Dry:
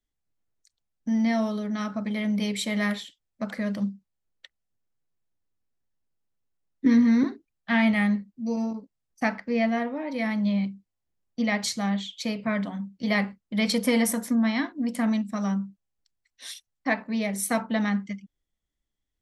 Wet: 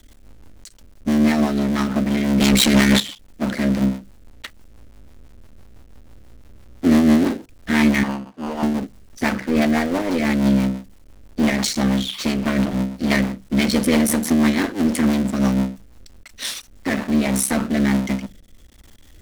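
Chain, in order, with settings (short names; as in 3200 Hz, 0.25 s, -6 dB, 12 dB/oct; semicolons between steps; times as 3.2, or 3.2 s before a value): cycle switcher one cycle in 3, muted; 2.4–3 sample leveller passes 5; 8.03–8.63 band-pass 960 Hz, Q 1.9; power-law curve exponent 0.5; rotary speaker horn 6 Hz, later 1.2 Hz, at 16.59; on a send: reverb RT60 0.15 s, pre-delay 3 ms, DRR 19 dB; on the sum: gain +3.5 dB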